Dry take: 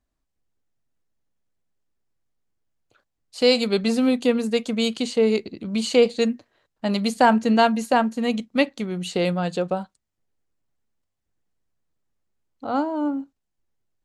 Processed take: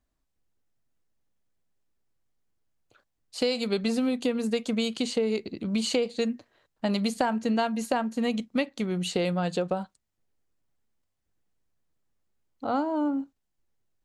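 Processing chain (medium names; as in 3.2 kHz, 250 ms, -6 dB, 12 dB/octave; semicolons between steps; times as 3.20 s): compression 6:1, threshold -23 dBFS, peak gain reduction 12 dB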